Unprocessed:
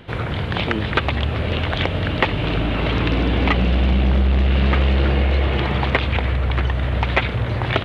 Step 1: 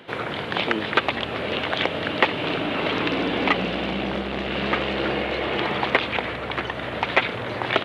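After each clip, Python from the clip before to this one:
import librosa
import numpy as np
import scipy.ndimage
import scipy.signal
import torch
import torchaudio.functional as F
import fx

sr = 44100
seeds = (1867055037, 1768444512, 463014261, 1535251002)

y = scipy.signal.sosfilt(scipy.signal.butter(2, 270.0, 'highpass', fs=sr, output='sos'), x)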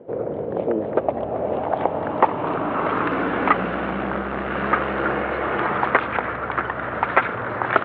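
y = fx.filter_sweep_lowpass(x, sr, from_hz=520.0, to_hz=1400.0, start_s=0.57, end_s=3.2, q=2.7)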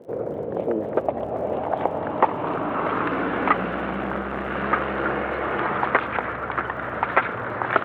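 y = fx.dmg_crackle(x, sr, seeds[0], per_s=60.0, level_db=-44.0)
y = y * librosa.db_to_amplitude(-2.0)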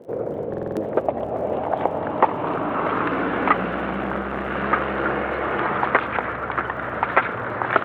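y = fx.buffer_glitch(x, sr, at_s=(0.49,), block=2048, repeats=5)
y = y * librosa.db_to_amplitude(1.5)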